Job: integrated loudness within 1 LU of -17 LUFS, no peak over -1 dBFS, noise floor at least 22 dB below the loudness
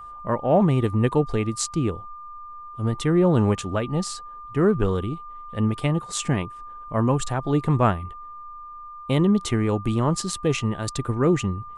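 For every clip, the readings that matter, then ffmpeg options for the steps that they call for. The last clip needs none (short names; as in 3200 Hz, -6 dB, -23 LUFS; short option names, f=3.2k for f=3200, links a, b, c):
steady tone 1200 Hz; tone level -37 dBFS; loudness -23.5 LUFS; peak -7.5 dBFS; loudness target -17.0 LUFS
-> -af "bandreject=f=1.2k:w=30"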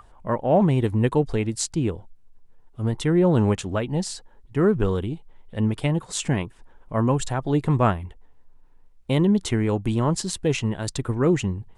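steady tone none; loudness -23.5 LUFS; peak -6.5 dBFS; loudness target -17.0 LUFS
-> -af "volume=6.5dB,alimiter=limit=-1dB:level=0:latency=1"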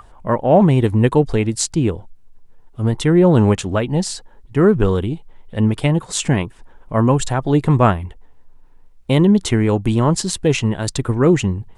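loudness -17.0 LUFS; peak -1.0 dBFS; noise floor -46 dBFS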